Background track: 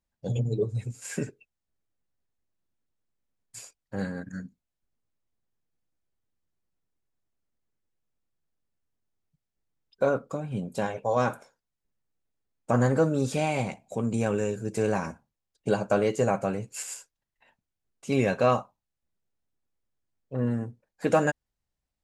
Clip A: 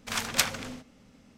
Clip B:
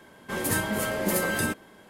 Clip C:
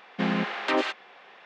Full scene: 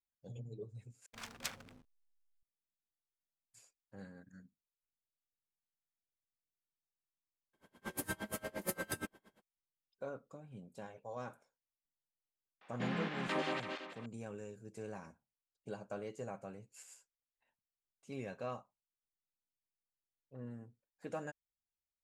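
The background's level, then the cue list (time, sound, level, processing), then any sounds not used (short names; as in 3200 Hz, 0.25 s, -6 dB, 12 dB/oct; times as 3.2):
background track -20 dB
1.06 replace with A -17 dB + backlash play -31.5 dBFS
7.53 add B -9 dB, fades 0.05 s + dB-linear tremolo 8.6 Hz, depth 28 dB
12.61 add C -12.5 dB + regenerating reverse delay 0.167 s, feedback 50%, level -3 dB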